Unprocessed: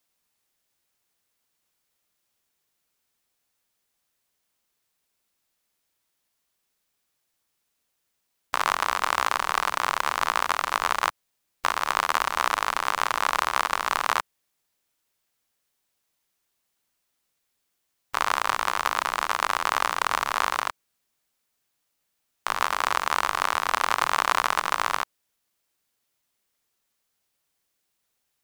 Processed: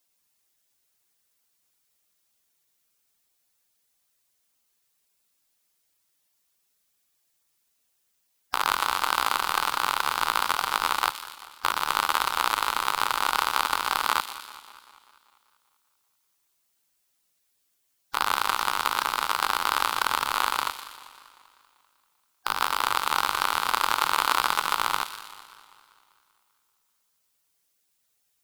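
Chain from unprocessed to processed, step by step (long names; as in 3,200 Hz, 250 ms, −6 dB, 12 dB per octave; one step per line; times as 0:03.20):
spectral magnitudes quantised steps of 15 dB
high-shelf EQ 4,200 Hz +6 dB
delay with a high-pass on its return 121 ms, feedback 57%, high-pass 3,000 Hz, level −8 dB
feedback echo with a swinging delay time 195 ms, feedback 59%, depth 131 cents, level −17.5 dB
level −1 dB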